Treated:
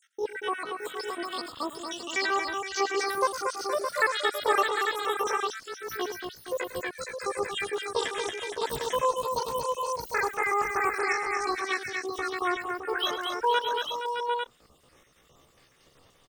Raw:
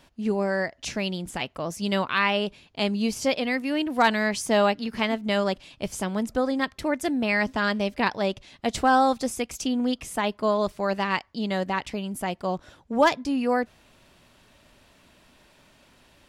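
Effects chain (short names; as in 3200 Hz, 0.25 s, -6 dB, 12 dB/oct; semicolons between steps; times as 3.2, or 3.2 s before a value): random spectral dropouts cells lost 71%; high shelf 2300 Hz -3.5 dB; pitch shift +11.5 st; tapped delay 0.105/0.231/0.469/0.615/0.753/0.849 s -13.5/-6/-10/-7.5/-8.5/-6.5 dB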